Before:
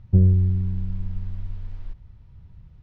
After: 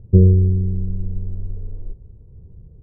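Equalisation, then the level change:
low-pass with resonance 440 Hz, resonance Q 4.9
high-frequency loss of the air 300 metres
+4.0 dB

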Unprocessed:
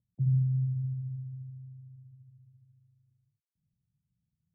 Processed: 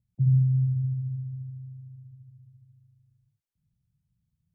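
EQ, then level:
low-shelf EQ 120 Hz +11.5 dB
0.0 dB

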